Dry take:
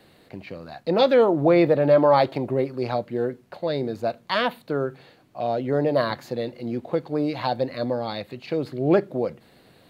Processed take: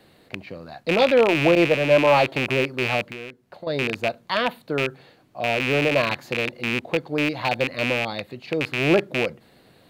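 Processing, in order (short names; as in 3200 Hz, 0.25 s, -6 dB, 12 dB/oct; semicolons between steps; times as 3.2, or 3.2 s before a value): rattling part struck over -32 dBFS, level -12 dBFS; 1.55–2.07 expander -15 dBFS; 3.06–3.67 compressor 3:1, threshold -38 dBFS, peak gain reduction 14 dB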